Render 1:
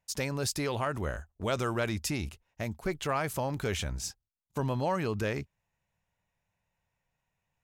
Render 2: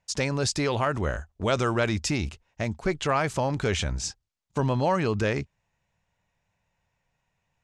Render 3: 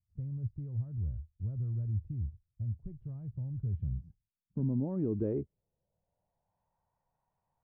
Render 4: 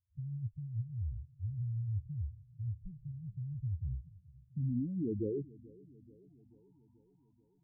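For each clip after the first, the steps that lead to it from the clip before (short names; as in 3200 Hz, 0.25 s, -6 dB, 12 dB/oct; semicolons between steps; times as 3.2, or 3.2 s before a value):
LPF 7900 Hz 24 dB/oct; gain +6 dB
low-pass sweep 110 Hz -> 920 Hz, 3.56–6.66; gain -8.5 dB
spectral contrast raised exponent 3.9; darkening echo 0.435 s, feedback 66%, low-pass 940 Hz, level -21.5 dB; gain -2 dB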